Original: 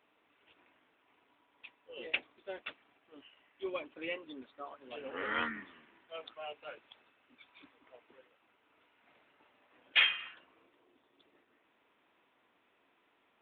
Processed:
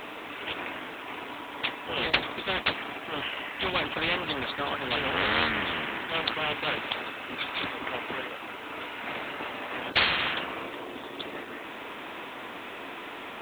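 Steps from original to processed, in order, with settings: spectral compressor 4:1; gain +8 dB

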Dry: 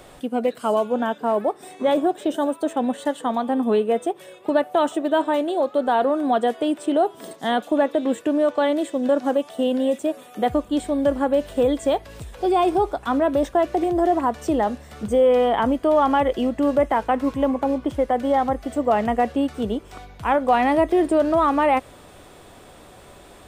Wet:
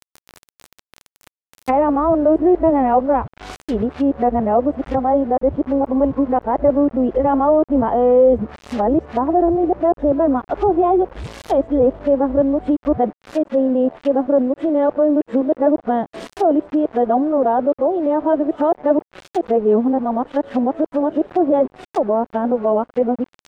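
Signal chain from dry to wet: whole clip reversed; requantised 6-bit, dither none; treble ducked by the level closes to 800 Hz, closed at -19.5 dBFS; gain +5 dB

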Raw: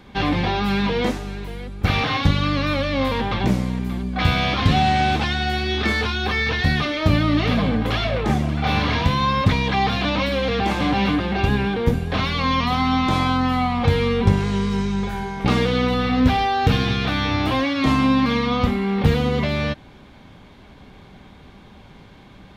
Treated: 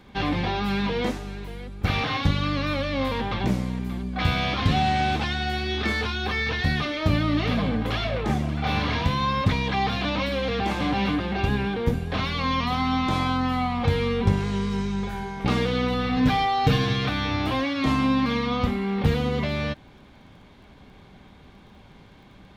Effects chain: crackle 20/s -47 dBFS; 16.16–17.09 comb 6.7 ms, depth 80%; gain -4.5 dB

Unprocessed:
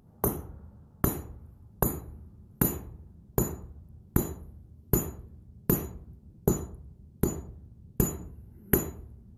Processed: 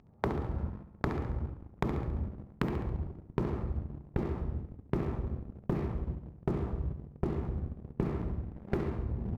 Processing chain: elliptic low-pass 2400 Hz, stop band 40 dB; notch 1500 Hz, Q 9.5; reverse; upward compressor, threshold -32 dBFS; reverse; sample leveller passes 3; compressor 5:1, threshold -33 dBFS, peak gain reduction 16.5 dB; on a send: feedback echo 69 ms, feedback 53%, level -10.5 dB; on the sum: gain +2 dB

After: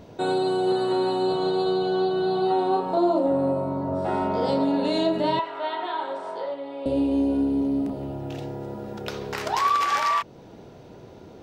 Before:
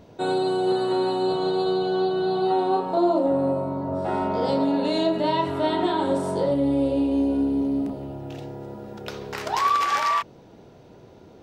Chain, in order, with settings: in parallel at -1.5 dB: compressor, threshold -33 dBFS, peak gain reduction 15.5 dB; 5.39–6.86 on the sum: BPF 780–3100 Hz; gain -2 dB

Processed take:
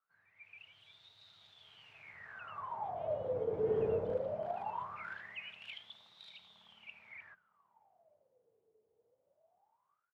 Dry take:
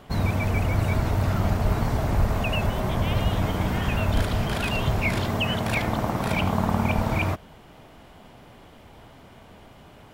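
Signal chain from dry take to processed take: Doppler pass-by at 3.83, 7 m/s, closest 1.6 m; AGC gain up to 14 dB; outdoor echo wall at 160 m, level -29 dB; on a send at -17.5 dB: reverb RT60 0.30 s, pre-delay 3 ms; on the sum: wah 0.2 Hz 440–3800 Hz, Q 19; gain +2 dB

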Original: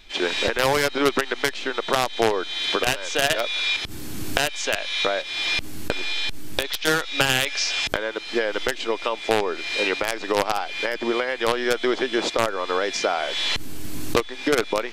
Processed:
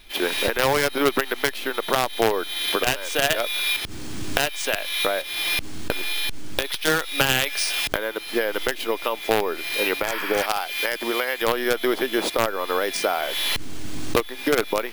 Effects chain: 10.1–10.43 spectral repair 880–5600 Hz before; 10.37–11.42 tilt +2 dB/oct; careless resampling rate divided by 3×, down none, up hold

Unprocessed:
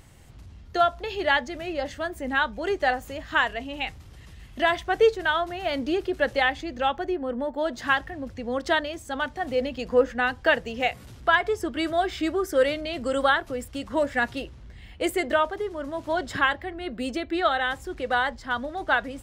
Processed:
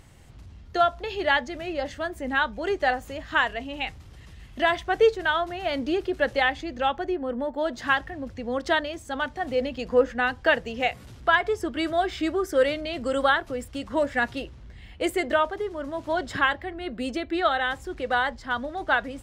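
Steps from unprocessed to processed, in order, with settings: high shelf 11000 Hz -6.5 dB

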